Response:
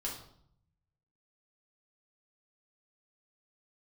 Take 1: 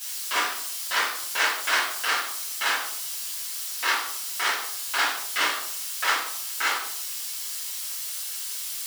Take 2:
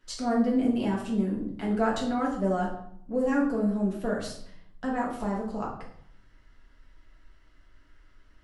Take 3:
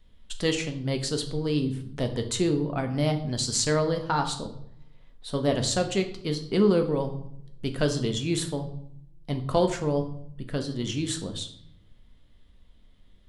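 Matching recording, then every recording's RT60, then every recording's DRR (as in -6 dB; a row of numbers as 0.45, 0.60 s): 2; 0.65, 0.65, 0.65 s; -10.5, -3.5, 5.0 dB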